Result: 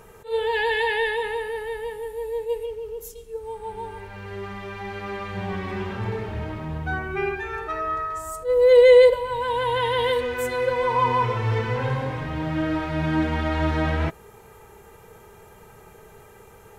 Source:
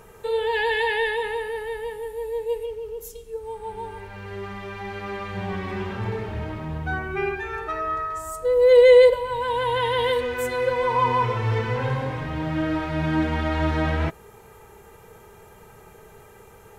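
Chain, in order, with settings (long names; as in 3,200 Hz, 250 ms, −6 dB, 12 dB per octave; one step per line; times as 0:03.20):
level that may rise only so fast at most 230 dB per second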